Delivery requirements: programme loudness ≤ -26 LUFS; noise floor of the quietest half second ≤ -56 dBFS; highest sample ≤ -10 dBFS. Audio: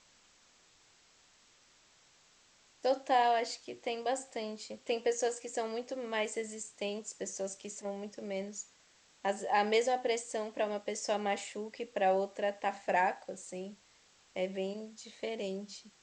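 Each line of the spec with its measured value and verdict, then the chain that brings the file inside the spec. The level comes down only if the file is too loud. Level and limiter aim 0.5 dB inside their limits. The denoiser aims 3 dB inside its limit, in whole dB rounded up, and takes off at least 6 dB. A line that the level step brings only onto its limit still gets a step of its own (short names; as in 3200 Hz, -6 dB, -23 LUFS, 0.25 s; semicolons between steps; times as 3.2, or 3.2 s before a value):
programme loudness -35.0 LUFS: OK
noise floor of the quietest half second -65 dBFS: OK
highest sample -16.0 dBFS: OK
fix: none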